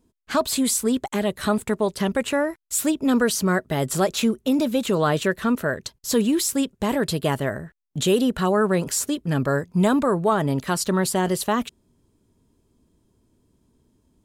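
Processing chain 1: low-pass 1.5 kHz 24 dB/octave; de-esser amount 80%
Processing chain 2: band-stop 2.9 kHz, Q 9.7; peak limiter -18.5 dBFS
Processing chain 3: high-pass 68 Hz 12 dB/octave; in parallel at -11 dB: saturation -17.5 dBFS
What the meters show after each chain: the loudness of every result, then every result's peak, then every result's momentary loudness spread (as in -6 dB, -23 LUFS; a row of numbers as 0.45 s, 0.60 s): -23.5 LUFS, -27.5 LUFS, -21.0 LUFS; -9.5 dBFS, -18.5 dBFS, -7.5 dBFS; 6 LU, 5 LU, 5 LU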